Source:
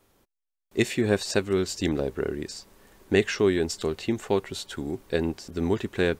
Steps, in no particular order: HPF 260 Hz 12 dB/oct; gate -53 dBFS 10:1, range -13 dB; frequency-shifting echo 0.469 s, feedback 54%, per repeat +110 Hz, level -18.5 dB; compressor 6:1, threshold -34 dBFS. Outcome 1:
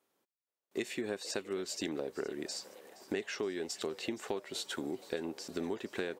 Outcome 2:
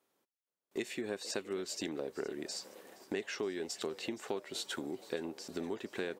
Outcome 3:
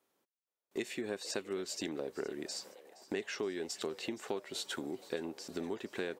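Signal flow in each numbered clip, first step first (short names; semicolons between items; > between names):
gate > HPF > compressor > frequency-shifting echo; compressor > frequency-shifting echo > HPF > gate; compressor > HPF > gate > frequency-shifting echo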